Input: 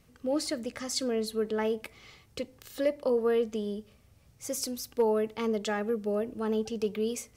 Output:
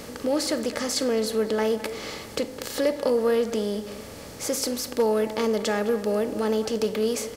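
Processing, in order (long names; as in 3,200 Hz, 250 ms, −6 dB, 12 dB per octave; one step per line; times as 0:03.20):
compressor on every frequency bin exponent 0.6
in parallel at +1 dB: downward compressor, threshold −40 dBFS, peak gain reduction 18 dB
on the sum: far-end echo of a speakerphone 210 ms, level −12 dB
level +1 dB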